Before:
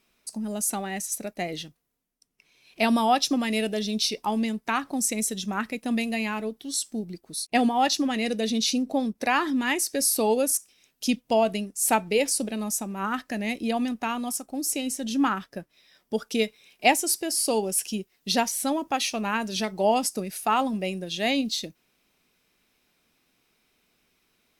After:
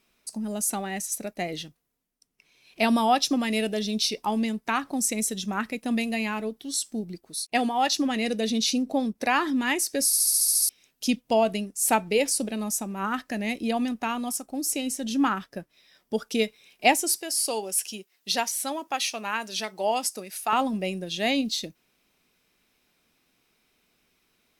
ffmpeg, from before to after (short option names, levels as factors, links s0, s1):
-filter_complex "[0:a]asettb=1/sr,asplit=3[s0][s1][s2];[s0]atrim=end=7.284[s3];[s1]atrim=start=7.28:end=7.96,asetpts=PTS-STARTPTS,afade=t=in:d=0.004:c=qsin,afade=t=out:st=0.676:d=0.004:c=qsin,lowshelf=f=360:g=-7[s4];[s2]atrim=start=7.956[s5];[s3][s4]acrossfade=d=0.004:c1=hsin:c2=qsin[s6];[s6][s5]acrossfade=d=0.004:c1=qsin:c2=hsin,asettb=1/sr,asplit=3[s7][s8][s9];[s7]atrim=end=17.184[s10];[s8]atrim=start=17.18:end=20.53,asetpts=PTS-STARTPTS,afade=t=in:d=0.004:c=qsin,afade=t=out:st=3.346:d=0.004:c=qsin,highpass=f=720:p=1[s11];[s9]atrim=start=20.526[s12];[s10][s11]acrossfade=d=0.004:c1=hsin:c2=qsin[s13];[s13][s12]acrossfade=d=0.004:c1=qsin:c2=hsin,asplit=10[s14][s15][s16][s17][s18][s19][s20][s21][s22][s23];[s14]atrim=end=10.132[s24];[s15]atrim=start=10.058:end=10.132[s25];[s16]atrim=start=10.058:end=10.132[s26];[s17]atrim=start=10.058:end=10.132[s27];[s18]atrim=start=10.058:end=10.132[s28];[s19]atrim=start=10.058:end=10.132[s29];[s20]atrim=start=10.058:end=10.132[s30];[s21]atrim=start=10.058:end=10.132[s31];[s22]atrim=start=10.058:end=10.132[s32];[s23]atrim=start=10.688[s33];[s24][s25]acrossfade=d=0.004:c1=hsin:c2=hsin[s34];[s34][s26]acrossfade=d=0.004:c1=hsin:c2=hsin[s35];[s35][s27]acrossfade=d=0.004:c1=hsin:c2=hsin[s36];[s36][s28]acrossfade=d=0.004:c1=hsin:c2=hsin[s37];[s37][s29]acrossfade=d=0.004:c1=hsin:c2=hsin[s38];[s38][s30]acrossfade=d=0.004:c1=hsin:c2=hsin[s39];[s39][s31]acrossfade=d=0.004:c1=hsin:c2=hsin[s40];[s40][s32]acrossfade=d=0.004:c1=hsin:c2=hsin[s41];[s41][s33]acrossfade=d=0.004:c1=hsin:c2=hsin"